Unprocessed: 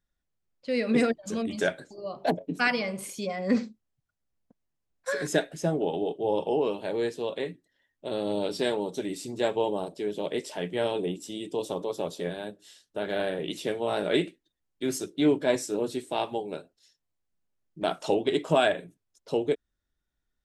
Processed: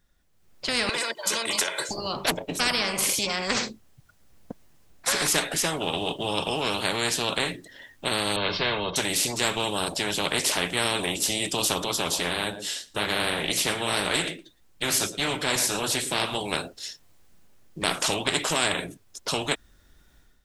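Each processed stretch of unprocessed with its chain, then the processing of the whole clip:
0.89–1.89 HPF 740 Hz + comb 2 ms, depth 97% + compressor 10:1, threshold -37 dBFS
8.36–8.96 inverse Chebyshev low-pass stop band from 7700 Hz, stop band 50 dB + comb 1.9 ms, depth 84%
11.84–16.41 flange 1.7 Hz, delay 0.5 ms, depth 8.1 ms, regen -56% + echo 0.114 s -23 dB
whole clip: AGC gain up to 12.5 dB; spectral compressor 4:1; gain -5 dB

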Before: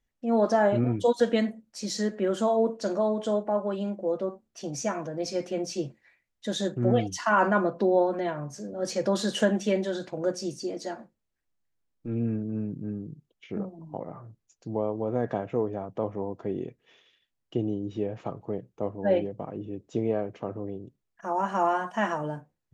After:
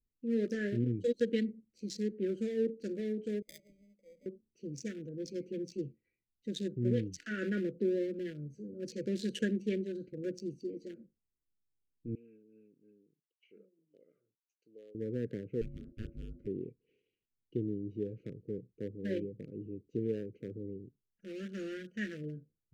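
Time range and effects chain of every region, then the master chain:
3.42–4.26 vowel filter a + sample-rate reducer 1400 Hz + fixed phaser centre 370 Hz, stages 6
12.15–14.95 HPF 1000 Hz + bell 2900 Hz +7 dB 0.2 oct
15.61–16.47 notches 50/100/150/200 Hz + ring modulator 450 Hz + doubler 36 ms -10 dB
whole clip: Wiener smoothing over 25 samples; elliptic band-stop 460–1700 Hz, stop band 50 dB; gain -5.5 dB

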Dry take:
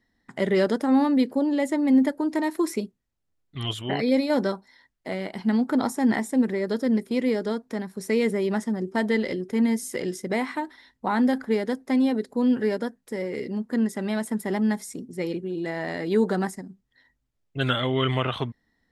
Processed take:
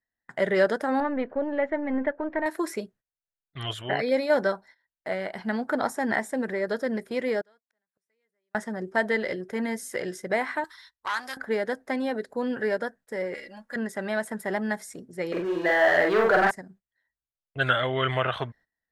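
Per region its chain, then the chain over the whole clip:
1–2.46 half-wave gain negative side -3 dB + LPF 2700 Hz 24 dB/oct
7.41–8.55 tilt shelf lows -5 dB, about 650 Hz + flipped gate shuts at -32 dBFS, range -33 dB
10.64–11.37 EQ curve 100 Hz 0 dB, 180 Hz -28 dB, 330 Hz -9 dB, 650 Hz -20 dB, 1100 Hz +5 dB, 1700 Hz -4 dB, 4800 Hz +11 dB + core saturation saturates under 2200 Hz
13.34–13.76 bell 250 Hz -14.5 dB 2.7 oct + comb 3.6 ms, depth 83%
15.32–16.51 band-pass 1100 Hz, Q 0.55 + sample leveller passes 3 + doubler 46 ms -2 dB
whole clip: gate -48 dBFS, range -19 dB; fifteen-band EQ 250 Hz -6 dB, 630 Hz +8 dB, 1600 Hz +11 dB; gain -4 dB

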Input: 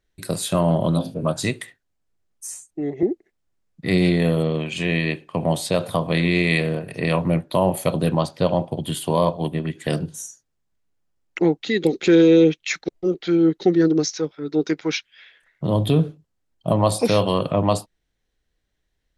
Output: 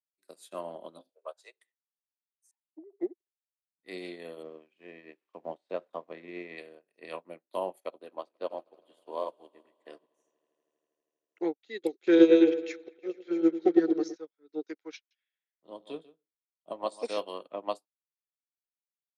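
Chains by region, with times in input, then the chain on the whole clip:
1.09–1.61 steep high-pass 430 Hz 48 dB/oct + high shelf 8300 Hz -7.5 dB + upward compressor, threshold -45 dBFS
2.51–3.01 sine-wave speech + treble ducked by the level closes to 460 Hz, closed at -25 dBFS + bell 770 Hz +14 dB 0.69 oct
4.43–6.58 switching spikes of -24 dBFS + LPF 1900 Hz + bell 170 Hz +2.5 dB 2.2 oct
7.8–11.41 LPF 2400 Hz 6 dB/oct + bell 170 Hz -9 dB 0.71 oct + swelling echo 80 ms, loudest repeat 5, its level -18 dB
12.03–14.16 high shelf 5800 Hz -10 dB + repeats that get brighter 0.108 s, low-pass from 750 Hz, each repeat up 1 oct, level -6 dB
14.96–17.18 elliptic low-pass 9000 Hz + echo 0.147 s -7.5 dB
whole clip: HPF 300 Hz 24 dB/oct; upward expander 2.5:1, over -37 dBFS; gain -1.5 dB

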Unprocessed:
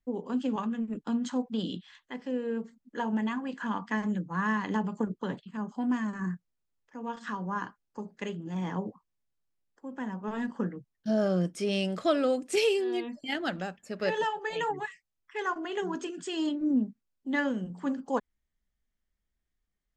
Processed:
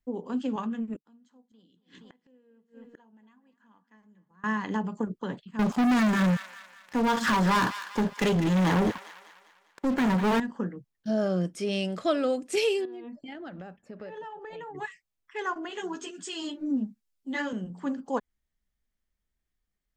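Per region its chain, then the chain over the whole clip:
0.96–4.44 feedback echo 0.235 s, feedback 51%, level -17 dB + flipped gate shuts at -35 dBFS, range -29 dB
5.59–10.4 sample leveller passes 5 + thin delay 0.199 s, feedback 48%, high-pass 1400 Hz, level -8.5 dB
12.85–14.75 LPF 1100 Hz 6 dB/oct + compressor 10:1, threshold -37 dBFS
15.69–17.53 high shelf 2500 Hz +8 dB + ensemble effect
whole clip: dry

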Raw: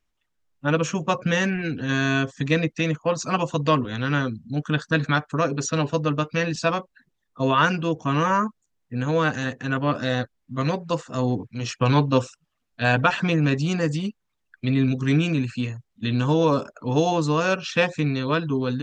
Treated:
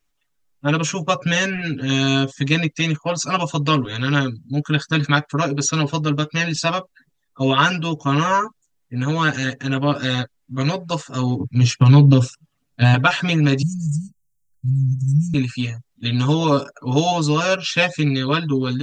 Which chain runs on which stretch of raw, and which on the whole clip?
11.4–12.94 bell 120 Hz +12.5 dB 2.9 oct + compressor, threshold -11 dBFS
13.62–15.34 inverse Chebyshev band-stop 350–3800 Hz + comb 1.6 ms, depth 59%
whole clip: high shelf 5000 Hz +7 dB; comb 7.1 ms, depth 77%; dynamic EQ 3600 Hz, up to +4 dB, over -38 dBFS, Q 1

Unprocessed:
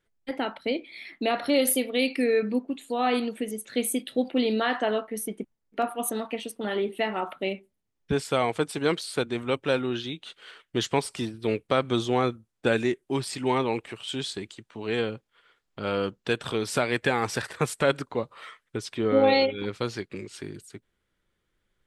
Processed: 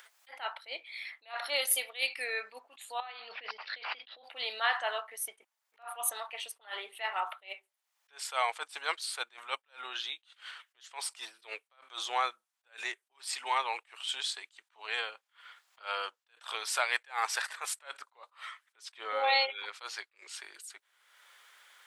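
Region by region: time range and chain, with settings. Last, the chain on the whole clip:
3–4.24 negative-ratio compressor -35 dBFS + careless resampling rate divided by 4×, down none, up filtered
whole clip: HPF 800 Hz 24 dB/oct; upward compressor, threshold -40 dBFS; attack slew limiter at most 240 dB/s

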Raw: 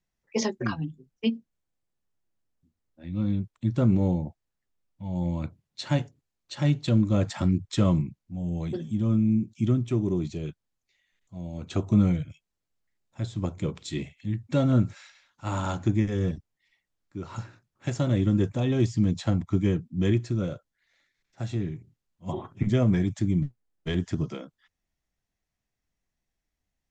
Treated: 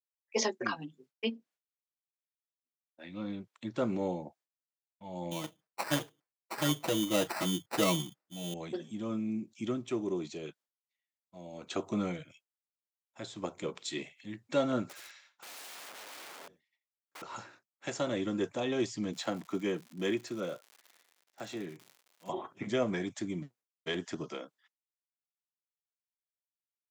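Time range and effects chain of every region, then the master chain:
0.82–3.79 high shelf 4700 Hz -7.5 dB + mismatched tape noise reduction encoder only
5.31–8.54 comb 6.3 ms, depth 85% + sample-rate reducer 3300 Hz
14.89–17.22 feedback echo 84 ms, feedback 27%, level -7.5 dB + compressor 3:1, threshold -36 dBFS + wrapped overs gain 42.5 dB
19.12–22.28 crackle 180/s -42 dBFS + HPF 120 Hz 24 dB/oct
whole clip: HPF 410 Hz 12 dB/oct; expander -58 dBFS

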